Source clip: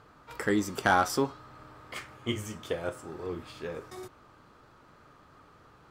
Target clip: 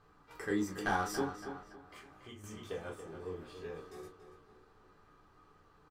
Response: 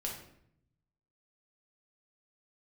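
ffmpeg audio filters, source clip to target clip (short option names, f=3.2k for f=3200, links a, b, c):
-filter_complex "[0:a]asplit=2[a][b];[b]adelay=282,lowpass=f=4.4k:p=1,volume=-10dB,asplit=2[c][d];[d]adelay=282,lowpass=f=4.4k:p=1,volume=0.49,asplit=2[e][f];[f]adelay=282,lowpass=f=4.4k:p=1,volume=0.49,asplit=2[g][h];[h]adelay=282,lowpass=f=4.4k:p=1,volume=0.49,asplit=2[i][j];[j]adelay=282,lowpass=f=4.4k:p=1,volume=0.49[k];[a][c][e][g][i][k]amix=inputs=6:normalize=0[l];[1:a]atrim=start_sample=2205,atrim=end_sample=4410,asetrate=88200,aresample=44100[m];[l][m]afir=irnorm=-1:irlink=0,asettb=1/sr,asplit=3[n][o][p];[n]atrim=end=1.624[q];[o]atrim=start=1.62:end=2.44,asetpts=PTS-STARTPTS,afade=t=in:d=0.004:c=qsin,afade=t=out:st=0.816:d=0.004:c=qsin,acompressor=threshold=-49dB:ratio=2.5[r];[p]atrim=start=2.436[s];[q][r]acrossfade=d=0.004:c1=hsin:c2=qsin[t];[t][s]acrossfade=d=0.004:c1=qsin:c2=hsin,volume=-3.5dB"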